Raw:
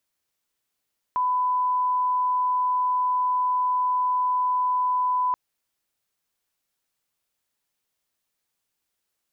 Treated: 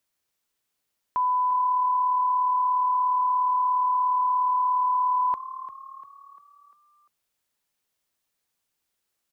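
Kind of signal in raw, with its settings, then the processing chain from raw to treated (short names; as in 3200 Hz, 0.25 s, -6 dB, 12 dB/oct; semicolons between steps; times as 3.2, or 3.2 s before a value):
line-up tone -20 dBFS 4.18 s
frequency-shifting echo 0.347 s, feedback 49%, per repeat +37 Hz, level -14.5 dB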